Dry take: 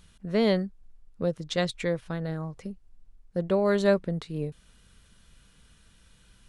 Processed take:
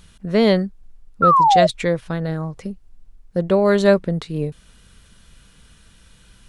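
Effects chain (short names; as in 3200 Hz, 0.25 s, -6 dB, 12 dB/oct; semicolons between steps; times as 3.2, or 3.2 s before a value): painted sound fall, 1.22–1.67, 610–1400 Hz -21 dBFS; gain +8 dB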